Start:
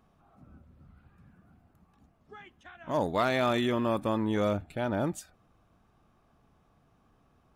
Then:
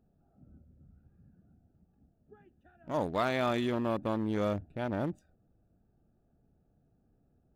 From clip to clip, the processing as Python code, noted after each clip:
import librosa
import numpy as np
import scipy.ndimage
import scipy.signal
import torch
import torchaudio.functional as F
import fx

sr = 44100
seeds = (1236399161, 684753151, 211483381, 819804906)

y = fx.wiener(x, sr, points=41)
y = y * librosa.db_to_amplitude(-2.5)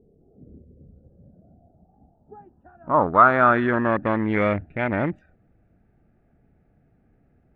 y = fx.filter_sweep_lowpass(x, sr, from_hz=440.0, to_hz=2100.0, start_s=0.67, end_s=4.33, q=5.6)
y = y * librosa.db_to_amplitude(8.5)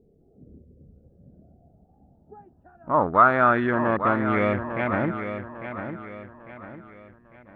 y = fx.echo_feedback(x, sr, ms=850, feedback_pct=40, wet_db=-9)
y = y * librosa.db_to_amplitude(-2.0)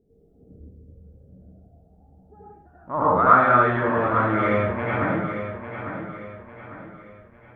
y = fx.rev_plate(x, sr, seeds[0], rt60_s=0.58, hf_ratio=0.75, predelay_ms=75, drr_db=-7.5)
y = y * librosa.db_to_amplitude(-6.5)